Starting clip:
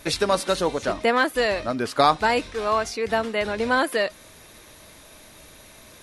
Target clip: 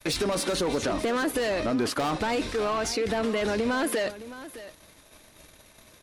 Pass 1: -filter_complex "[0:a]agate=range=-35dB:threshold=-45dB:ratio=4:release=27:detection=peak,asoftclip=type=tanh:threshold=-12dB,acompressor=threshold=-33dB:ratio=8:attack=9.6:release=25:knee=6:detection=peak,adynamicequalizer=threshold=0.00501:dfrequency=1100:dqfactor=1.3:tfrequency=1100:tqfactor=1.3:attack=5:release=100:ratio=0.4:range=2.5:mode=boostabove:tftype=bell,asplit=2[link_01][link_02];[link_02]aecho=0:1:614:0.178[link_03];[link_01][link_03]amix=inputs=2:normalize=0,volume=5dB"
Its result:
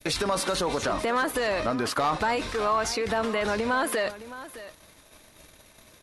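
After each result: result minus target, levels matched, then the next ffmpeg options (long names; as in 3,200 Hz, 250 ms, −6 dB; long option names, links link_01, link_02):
soft clipping: distortion −9 dB; 250 Hz band −4.0 dB
-filter_complex "[0:a]agate=range=-35dB:threshold=-45dB:ratio=4:release=27:detection=peak,asoftclip=type=tanh:threshold=-21.5dB,acompressor=threshold=-33dB:ratio=8:attack=9.6:release=25:knee=6:detection=peak,adynamicequalizer=threshold=0.00501:dfrequency=1100:dqfactor=1.3:tfrequency=1100:tqfactor=1.3:attack=5:release=100:ratio=0.4:range=2.5:mode=boostabove:tftype=bell,asplit=2[link_01][link_02];[link_02]aecho=0:1:614:0.178[link_03];[link_01][link_03]amix=inputs=2:normalize=0,volume=5dB"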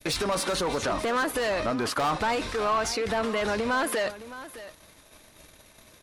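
250 Hz band −3.5 dB
-filter_complex "[0:a]agate=range=-35dB:threshold=-45dB:ratio=4:release=27:detection=peak,asoftclip=type=tanh:threshold=-21.5dB,acompressor=threshold=-33dB:ratio=8:attack=9.6:release=25:knee=6:detection=peak,adynamicequalizer=threshold=0.00501:dfrequency=300:dqfactor=1.3:tfrequency=300:tqfactor=1.3:attack=5:release=100:ratio=0.4:range=2.5:mode=boostabove:tftype=bell,asplit=2[link_01][link_02];[link_02]aecho=0:1:614:0.178[link_03];[link_01][link_03]amix=inputs=2:normalize=0,volume=5dB"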